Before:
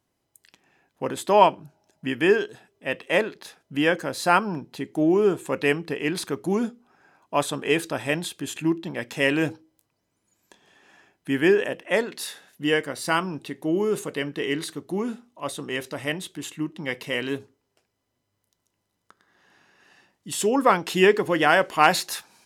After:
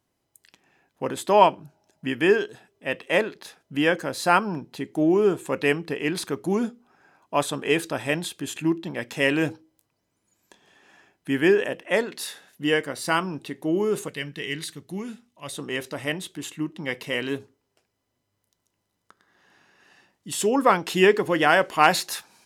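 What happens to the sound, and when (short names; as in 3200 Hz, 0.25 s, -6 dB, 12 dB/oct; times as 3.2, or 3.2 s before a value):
14.08–15.53 band shelf 580 Hz -8.5 dB 2.8 oct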